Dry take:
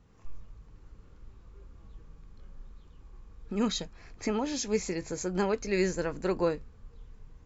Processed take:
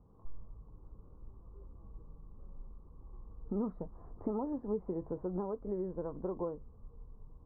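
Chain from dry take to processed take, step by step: compression 6:1, threshold -32 dBFS, peak gain reduction 10 dB; elliptic low-pass 1.1 kHz, stop band 60 dB; gain riding 2 s

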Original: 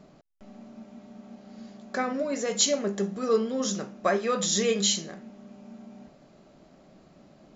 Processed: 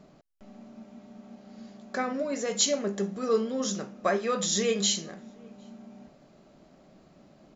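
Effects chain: echo from a far wall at 130 m, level -28 dB; trim -1.5 dB

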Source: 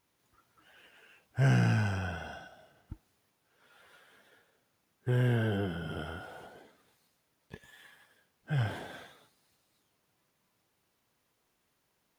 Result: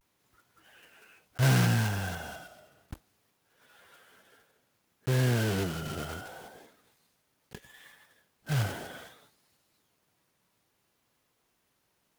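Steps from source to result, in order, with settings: block-companded coder 3-bit; vibrato 0.65 Hz 70 cents; trim +1.5 dB

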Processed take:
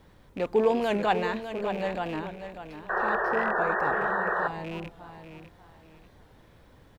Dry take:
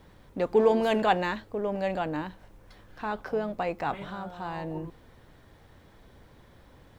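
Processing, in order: rattle on loud lows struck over -37 dBFS, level -30 dBFS; 3.53–4.37 s: peaking EQ 3.4 kHz -6.5 dB 1.6 oct; feedback delay 593 ms, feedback 30%, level -10 dB; 2.89–4.48 s: painted sound noise 340–1900 Hz -26 dBFS; warped record 45 rpm, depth 100 cents; trim -1.5 dB

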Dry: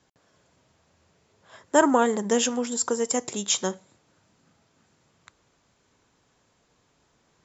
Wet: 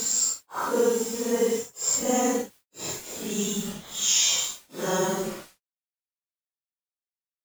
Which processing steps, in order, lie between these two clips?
bit crusher 6-bit; Paulstretch 5.6×, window 0.05 s, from 2.77 s

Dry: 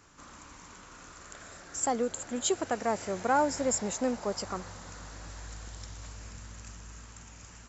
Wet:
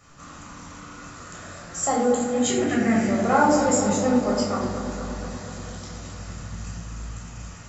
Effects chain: 2.41–3.07 s: graphic EQ 125/250/500/1000/2000/4000 Hz +6/+10/-9/-11/+11/-5 dB; filtered feedback delay 237 ms, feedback 69%, low-pass 2 kHz, level -7.5 dB; reverberation RT60 0.65 s, pre-delay 11 ms, DRR -3.5 dB

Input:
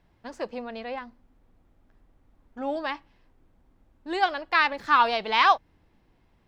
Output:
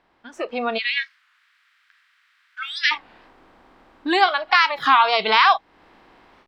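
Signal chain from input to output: spectral levelling over time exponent 0.6; 0.78–2.93 s: steep high-pass 1.5 kHz 36 dB/octave; compression 2:1, threshold -32 dBFS, peak gain reduction 10.5 dB; spectral noise reduction 19 dB; level rider gain up to 12.5 dB; dynamic bell 4.8 kHz, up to +3 dB, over -34 dBFS, Q 1.2; warped record 33 1/3 rpm, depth 160 cents; trim +1 dB

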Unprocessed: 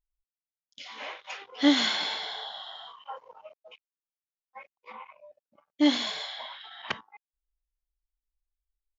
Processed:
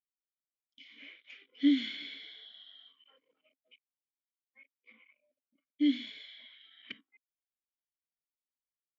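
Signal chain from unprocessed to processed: vowel filter i

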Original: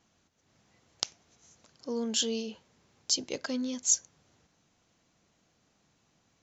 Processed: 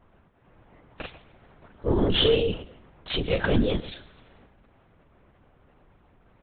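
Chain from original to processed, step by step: short-time spectra conjugated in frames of 66 ms; level-controlled noise filter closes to 1.6 kHz, open at -34 dBFS; sine folder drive 13 dB, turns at -14 dBFS; feedback delay 128 ms, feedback 26%, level -16 dB; LPC vocoder at 8 kHz whisper

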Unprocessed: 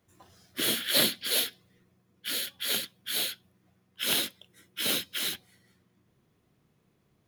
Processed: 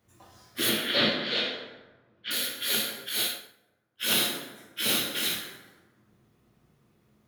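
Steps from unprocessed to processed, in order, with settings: 0.69–2.31 s: low-pass 4 kHz 24 dB/octave; plate-style reverb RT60 1.2 s, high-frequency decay 0.55×, DRR -2 dB; 3.09–4.04 s: upward expansion 1.5:1, over -51 dBFS

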